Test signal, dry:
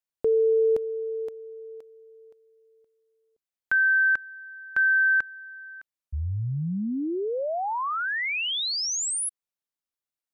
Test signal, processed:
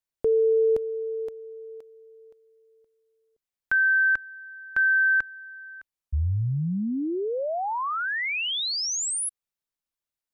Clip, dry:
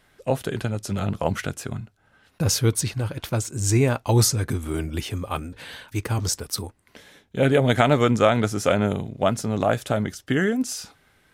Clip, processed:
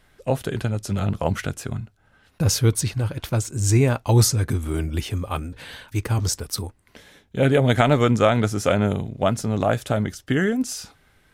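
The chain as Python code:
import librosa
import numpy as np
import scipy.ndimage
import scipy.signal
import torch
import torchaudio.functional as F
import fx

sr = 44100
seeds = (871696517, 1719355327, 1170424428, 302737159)

y = fx.low_shelf(x, sr, hz=77.0, db=9.5)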